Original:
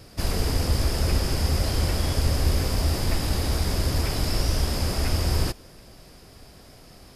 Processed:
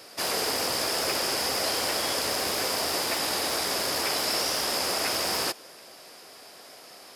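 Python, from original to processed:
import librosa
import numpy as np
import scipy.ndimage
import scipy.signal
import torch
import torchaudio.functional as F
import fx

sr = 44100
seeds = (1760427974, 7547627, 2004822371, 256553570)

y = np.minimum(x, 2.0 * 10.0 ** (-18.5 / 20.0) - x)
y = scipy.signal.sosfilt(scipy.signal.butter(2, 510.0, 'highpass', fs=sr, output='sos'), y)
y = F.gain(torch.from_numpy(y), 5.0).numpy()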